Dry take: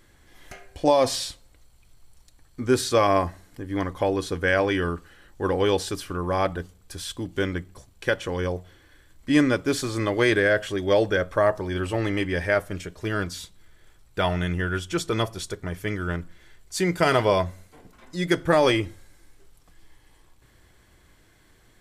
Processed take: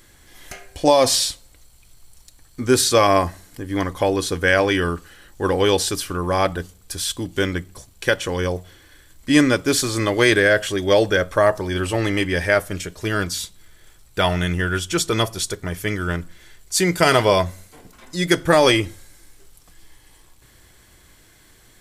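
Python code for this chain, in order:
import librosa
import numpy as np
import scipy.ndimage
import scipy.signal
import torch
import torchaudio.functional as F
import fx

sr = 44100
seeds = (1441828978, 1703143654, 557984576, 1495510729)

y = fx.high_shelf(x, sr, hz=3600.0, db=9.0)
y = F.gain(torch.from_numpy(y), 4.0).numpy()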